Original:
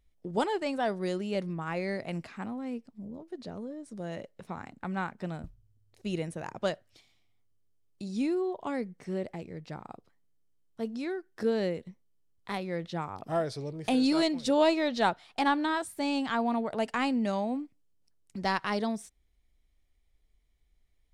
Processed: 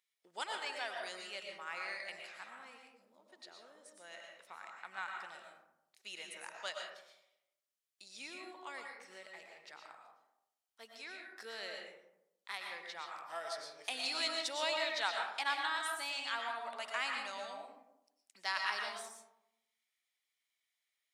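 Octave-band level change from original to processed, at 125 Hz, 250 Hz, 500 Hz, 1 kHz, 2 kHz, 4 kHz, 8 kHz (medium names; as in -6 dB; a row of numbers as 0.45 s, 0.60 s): under -35 dB, -28.5 dB, -15.0 dB, -8.5 dB, -1.5 dB, 0.0 dB, -0.5 dB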